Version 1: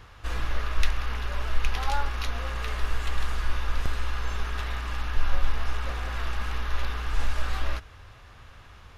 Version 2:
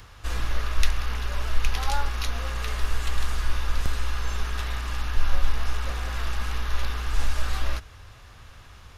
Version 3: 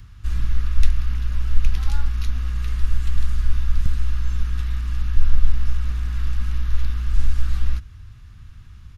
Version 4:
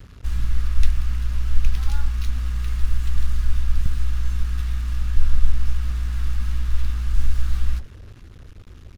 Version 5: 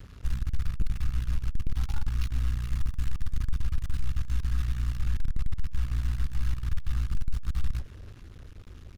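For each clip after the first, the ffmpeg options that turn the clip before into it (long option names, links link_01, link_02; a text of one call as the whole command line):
ffmpeg -i in.wav -filter_complex "[0:a]bass=frequency=250:gain=2,treble=frequency=4000:gain=7,acrossover=split=340|1100[link_01][link_02][link_03];[link_03]acompressor=mode=upward:threshold=-54dB:ratio=2.5[link_04];[link_01][link_02][link_04]amix=inputs=3:normalize=0" out.wav
ffmpeg -i in.wav -af "firequalizer=gain_entry='entry(160,0);entry(530,-25);entry(1300,-14)':delay=0.05:min_phase=1,volume=6.5dB" out.wav
ffmpeg -i in.wav -filter_complex "[0:a]acrusher=bits=6:mix=0:aa=0.5,asplit=2[link_01][link_02];[link_02]adelay=116.6,volume=-19dB,highshelf=frequency=4000:gain=-2.62[link_03];[link_01][link_03]amix=inputs=2:normalize=0,volume=-1dB" out.wav
ffmpeg -i in.wav -af "aeval=exprs='(tanh(12.6*val(0)+0.65)-tanh(0.65))/12.6':channel_layout=same" out.wav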